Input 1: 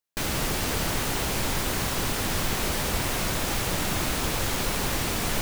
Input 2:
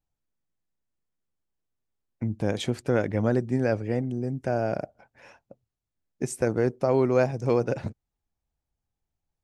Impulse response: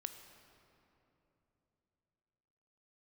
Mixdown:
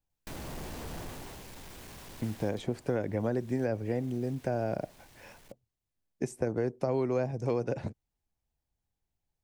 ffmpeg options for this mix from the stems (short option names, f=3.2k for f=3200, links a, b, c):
-filter_complex "[0:a]flanger=delay=9.7:depth=4.1:regen=-62:speed=0.79:shape=triangular,asoftclip=type=tanh:threshold=-32dB,adelay=100,volume=-2.5dB,afade=t=out:st=0.99:d=0.45:silence=0.375837,afade=t=out:st=2.25:d=0.62:silence=0.281838[a];[1:a]volume=-1dB[b];[a][b]amix=inputs=2:normalize=0,acrossover=split=310|1300[c][d][e];[c]acompressor=threshold=-33dB:ratio=4[f];[d]acompressor=threshold=-30dB:ratio=4[g];[e]acompressor=threshold=-48dB:ratio=4[h];[f][g][h]amix=inputs=3:normalize=0,equalizer=f=1.3k:t=o:w=0.26:g=-4.5"